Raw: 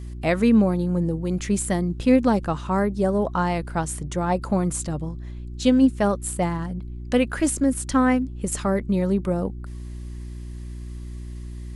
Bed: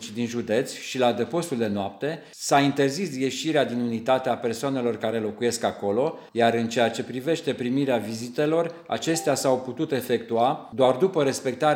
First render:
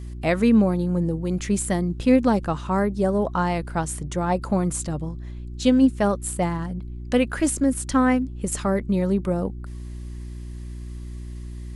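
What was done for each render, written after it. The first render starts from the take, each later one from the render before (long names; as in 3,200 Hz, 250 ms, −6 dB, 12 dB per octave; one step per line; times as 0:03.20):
no processing that can be heard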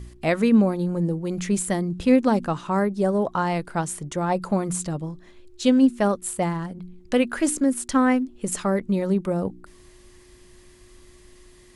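hum removal 60 Hz, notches 5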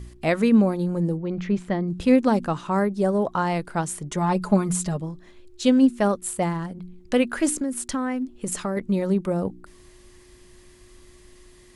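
0:01.17–0:01.88: high-frequency loss of the air 250 metres
0:04.11–0:05.00: comb filter 4.8 ms, depth 75%
0:07.59–0:08.77: downward compressor, threshold −22 dBFS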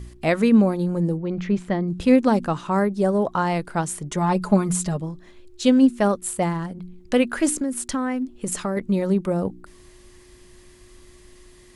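level +1.5 dB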